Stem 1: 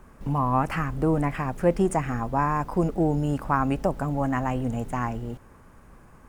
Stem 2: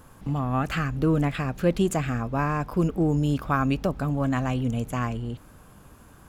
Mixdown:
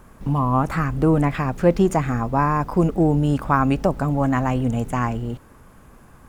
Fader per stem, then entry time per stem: +2.0, −3.5 decibels; 0.00, 0.00 seconds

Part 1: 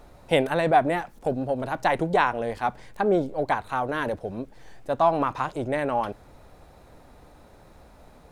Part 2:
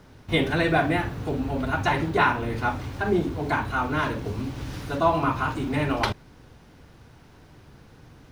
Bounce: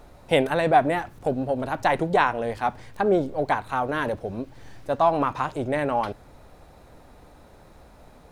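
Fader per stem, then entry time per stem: +1.0, −17.0 decibels; 0.00, 0.00 seconds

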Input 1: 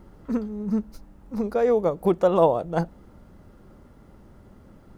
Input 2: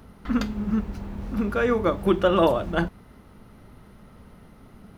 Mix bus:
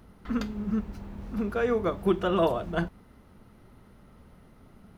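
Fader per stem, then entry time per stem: −12.5, −6.0 decibels; 0.00, 0.00 seconds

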